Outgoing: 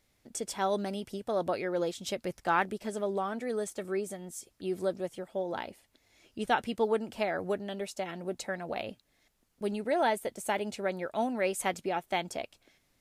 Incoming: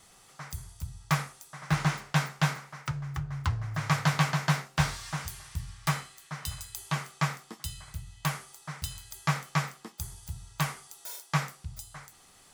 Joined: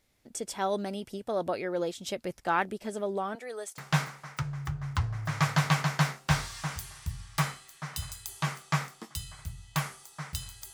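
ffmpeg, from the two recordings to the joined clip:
-filter_complex "[0:a]asettb=1/sr,asplit=3[a][b][c];[a]atrim=end=3.354[d];[b]atrim=start=3.35:end=3.78,asetpts=PTS-STARTPTS,afade=t=in:d=0.004:c=qsin,afade=t=out:st=0.426:d=0.004:c=qsin,highpass=590[e];[c]atrim=start=3.776[f];[d][e]acrossfade=d=0.004:c1=hsin:c2=qsin[g];[g][f]acrossfade=d=0.004:c1=qsin:c2=hsin,apad=whole_dur=10.73,atrim=end=10.73,atrim=end=3.782[h];[1:a]atrim=start=2.268:end=9.22[i];[h][i]acrossfade=d=0.004:c1=hsin:c2=hsin"

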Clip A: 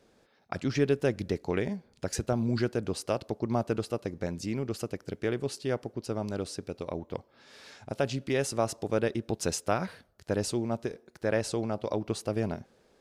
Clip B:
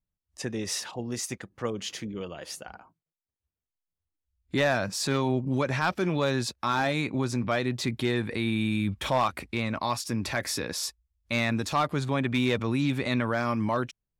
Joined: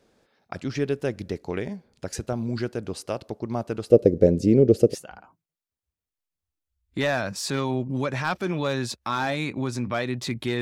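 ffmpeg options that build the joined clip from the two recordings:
-filter_complex "[0:a]asettb=1/sr,asplit=3[a][b][c];[a]atrim=end=3.904[d];[b]atrim=start=3.9:end=4.95,asetpts=PTS-STARTPTS,afade=t=in:d=0.004:c=qsin,afade=t=out:st=1.046:d=0.004:c=qsin,lowshelf=f=710:t=q:w=3:g=12.5[e];[c]atrim=start=4.946[f];[d][e]acrossfade=d=0.004:c1=hsin:c2=qsin[g];[g][f]acrossfade=d=0.004:c1=qsin:c2=hsin,apad=whole_dur=10.61,atrim=end=10.61,atrim=end=4.95,asetpts=PTS-STARTPTS[h];[1:a]atrim=start=2.46:end=8.18,asetpts=PTS-STARTPTS[i];[h][i]acrossfade=d=0.06:c1=tri:c2=tri"

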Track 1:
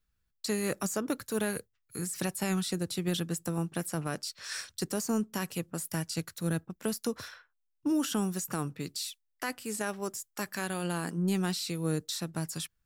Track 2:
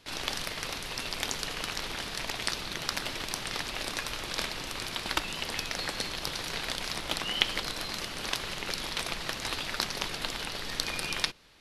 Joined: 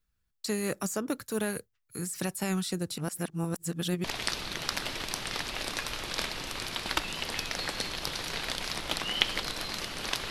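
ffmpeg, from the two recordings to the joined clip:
-filter_complex "[0:a]apad=whole_dur=10.3,atrim=end=10.3,asplit=2[a][b];[a]atrim=end=2.982[c];[b]atrim=start=2.978:end=4.042,asetpts=PTS-STARTPTS,areverse[d];[1:a]atrim=start=2.238:end=8.5[e];[c][d]acrossfade=d=0.004:c1=hsin:c2=hsin[f];[f][e]acrossfade=d=0.004:c1=hsin:c2=hsin"

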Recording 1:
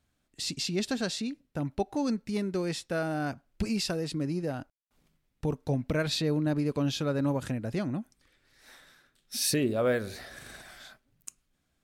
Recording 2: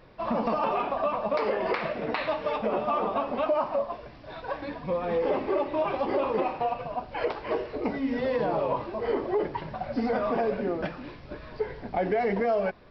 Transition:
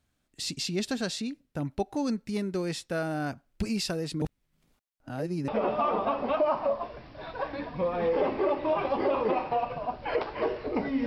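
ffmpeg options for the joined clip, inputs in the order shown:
-filter_complex "[0:a]apad=whole_dur=11.06,atrim=end=11.06,asplit=2[a][b];[a]atrim=end=4.222[c];[b]atrim=start=4.218:end=5.482,asetpts=PTS-STARTPTS,areverse[d];[1:a]atrim=start=2.568:end=8.15[e];[c][d]acrossfade=d=0.004:c1=hsin:c2=hsin[f];[f][e]acrossfade=d=0.004:c1=hsin:c2=hsin"

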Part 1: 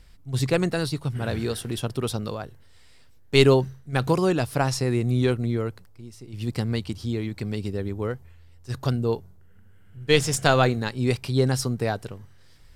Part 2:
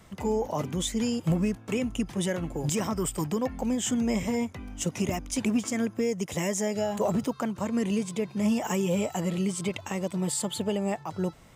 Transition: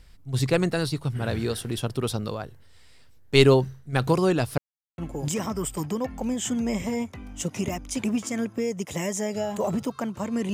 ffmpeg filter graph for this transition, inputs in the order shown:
-filter_complex "[0:a]apad=whole_dur=10.53,atrim=end=10.53,asplit=2[a][b];[a]atrim=end=4.58,asetpts=PTS-STARTPTS,afade=t=out:st=4.576:d=0.004:c=hsin[c];[b]atrim=start=4.58:end=4.98,asetpts=PTS-STARTPTS,volume=0[d];[1:a]atrim=start=2.39:end=7.94,asetpts=PTS-STARTPTS,afade=t=in:d=0.004:c=hsin[e];[c][d][e]concat=n=3:v=0:a=1"

